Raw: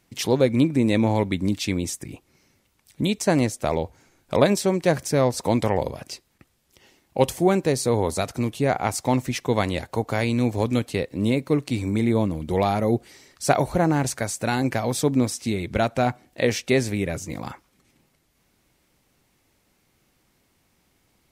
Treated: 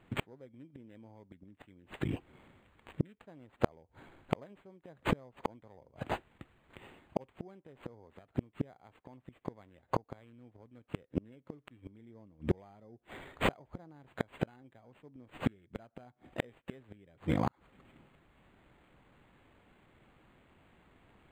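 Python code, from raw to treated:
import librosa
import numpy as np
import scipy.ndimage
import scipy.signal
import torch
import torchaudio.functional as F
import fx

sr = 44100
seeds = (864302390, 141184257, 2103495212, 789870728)

y = fx.gate_flip(x, sr, shuts_db=-17.0, range_db=-37)
y = np.interp(np.arange(len(y)), np.arange(len(y))[::8], y[::8])
y = y * 10.0 ** (3.0 / 20.0)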